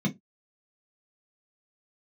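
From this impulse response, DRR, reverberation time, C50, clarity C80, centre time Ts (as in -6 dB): -0.5 dB, not exponential, 18.5 dB, 31.5 dB, 10 ms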